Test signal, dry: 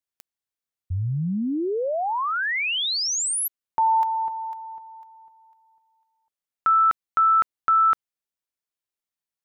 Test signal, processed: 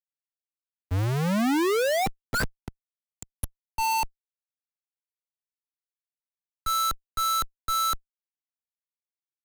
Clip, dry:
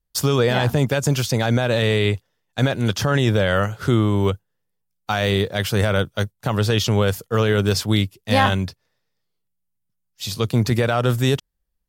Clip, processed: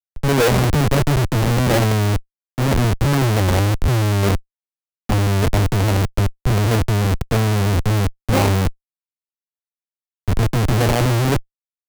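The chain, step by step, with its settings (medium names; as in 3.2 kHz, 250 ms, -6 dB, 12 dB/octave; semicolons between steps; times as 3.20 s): median filter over 41 samples; Schmitt trigger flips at -30 dBFS; three bands expanded up and down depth 70%; trim +7 dB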